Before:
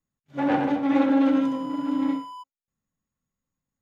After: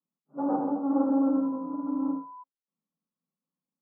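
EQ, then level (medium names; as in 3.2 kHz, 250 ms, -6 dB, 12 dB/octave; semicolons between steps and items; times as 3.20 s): Chebyshev band-pass 160–1300 Hz, order 5; distance through air 420 m; -3.0 dB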